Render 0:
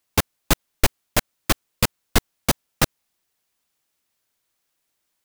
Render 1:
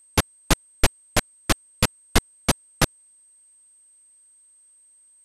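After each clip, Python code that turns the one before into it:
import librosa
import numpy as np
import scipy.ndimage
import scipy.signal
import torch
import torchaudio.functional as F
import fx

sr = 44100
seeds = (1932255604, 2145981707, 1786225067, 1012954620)

y = scipy.signal.sosfilt(scipy.signal.butter(6, 12000.0, 'lowpass', fs=sr, output='sos'), x)
y = y + 10.0 ** (-53.0 / 20.0) * np.sin(2.0 * np.pi * 8300.0 * np.arange(len(y)) / sr)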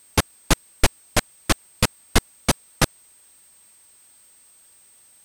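y = fx.quant_dither(x, sr, seeds[0], bits=10, dither='triangular')
y = y * 10.0 ** (1.0 / 20.0)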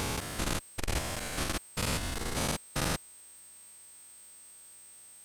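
y = fx.spec_steps(x, sr, hold_ms=200)
y = fx.transformer_sat(y, sr, knee_hz=140.0)
y = y * 10.0 ** (1.0 / 20.0)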